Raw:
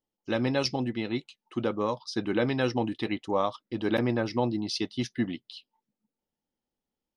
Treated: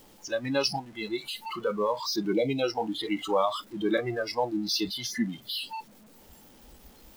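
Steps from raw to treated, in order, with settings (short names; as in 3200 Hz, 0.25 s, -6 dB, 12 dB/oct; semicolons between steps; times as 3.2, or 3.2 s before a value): zero-crossing step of -27.5 dBFS; spectral gain 2.33–2.63, 950–2000 Hz -14 dB; spectral noise reduction 20 dB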